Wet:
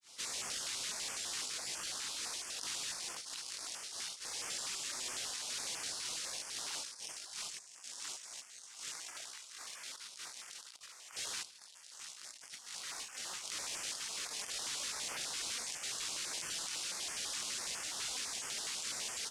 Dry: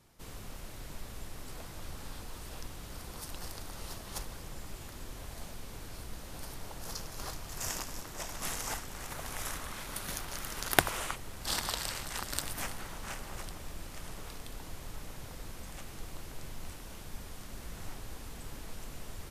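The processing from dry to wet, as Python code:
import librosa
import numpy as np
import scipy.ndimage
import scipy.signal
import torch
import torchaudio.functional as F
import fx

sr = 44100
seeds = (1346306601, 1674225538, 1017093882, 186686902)

p1 = fx.granulator(x, sr, seeds[0], grain_ms=237.0, per_s=12.0, spray_ms=14.0, spread_st=0)
p2 = np.repeat(p1[::3], 3)[:len(p1)]
p3 = fx.weighting(p2, sr, curve='ITU-R 468')
p4 = fx.over_compress(p3, sr, threshold_db=-48.0, ratio=-1.0)
p5 = fx.low_shelf(p4, sr, hz=160.0, db=-5.0)
p6 = p5 + fx.echo_feedback(p5, sr, ms=78, feedback_pct=56, wet_db=-18.5, dry=0)
p7 = fx.filter_held_notch(p6, sr, hz=12.0, low_hz=610.0, high_hz=3900.0)
y = p7 * librosa.db_to_amplitude(3.0)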